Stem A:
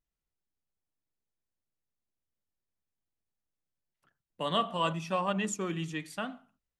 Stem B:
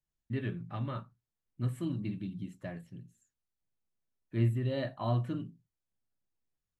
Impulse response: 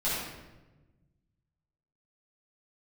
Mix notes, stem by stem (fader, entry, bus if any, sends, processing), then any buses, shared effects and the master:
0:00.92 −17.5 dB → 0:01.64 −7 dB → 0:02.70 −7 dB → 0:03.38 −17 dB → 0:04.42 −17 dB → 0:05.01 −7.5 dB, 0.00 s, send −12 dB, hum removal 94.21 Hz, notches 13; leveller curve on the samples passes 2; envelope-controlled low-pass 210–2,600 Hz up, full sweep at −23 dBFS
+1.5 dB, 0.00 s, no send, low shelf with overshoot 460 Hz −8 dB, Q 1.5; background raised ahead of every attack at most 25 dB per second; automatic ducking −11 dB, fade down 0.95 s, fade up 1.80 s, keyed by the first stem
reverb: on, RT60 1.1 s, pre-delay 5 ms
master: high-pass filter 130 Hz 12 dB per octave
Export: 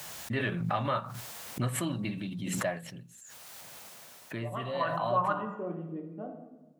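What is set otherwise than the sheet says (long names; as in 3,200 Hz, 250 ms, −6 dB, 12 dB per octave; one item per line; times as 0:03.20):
stem A: missing leveller curve on the samples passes 2
stem B +1.5 dB → +11.0 dB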